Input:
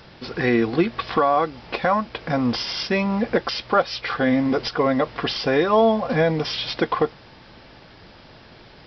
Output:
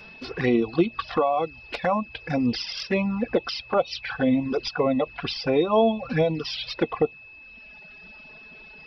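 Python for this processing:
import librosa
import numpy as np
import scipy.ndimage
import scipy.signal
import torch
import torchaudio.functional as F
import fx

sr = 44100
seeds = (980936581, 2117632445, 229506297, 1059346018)

y = fx.dereverb_blind(x, sr, rt60_s=1.7)
y = fx.env_flanger(y, sr, rest_ms=5.2, full_db=-18.0)
y = y + 10.0 ** (-44.0 / 20.0) * np.sin(2.0 * np.pi * 2600.0 * np.arange(len(y)) / sr)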